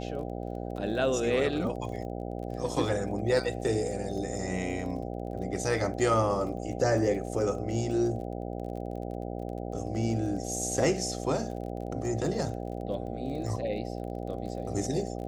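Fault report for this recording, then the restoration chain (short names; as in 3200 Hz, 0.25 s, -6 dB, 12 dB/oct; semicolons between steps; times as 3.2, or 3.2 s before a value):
buzz 60 Hz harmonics 13 -36 dBFS
crackle 26/s -39 dBFS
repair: de-click; de-hum 60 Hz, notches 13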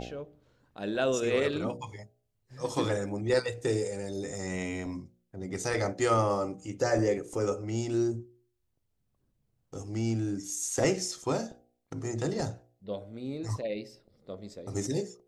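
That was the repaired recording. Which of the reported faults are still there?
none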